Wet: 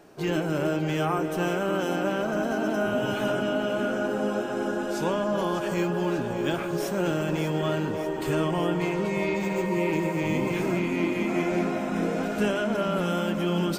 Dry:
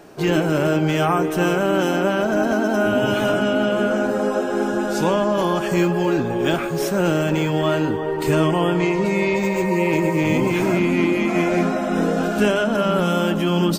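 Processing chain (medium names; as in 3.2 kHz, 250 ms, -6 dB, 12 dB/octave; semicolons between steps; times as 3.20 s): echo whose repeats swap between lows and highs 296 ms, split 920 Hz, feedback 85%, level -9.5 dB; trim -8 dB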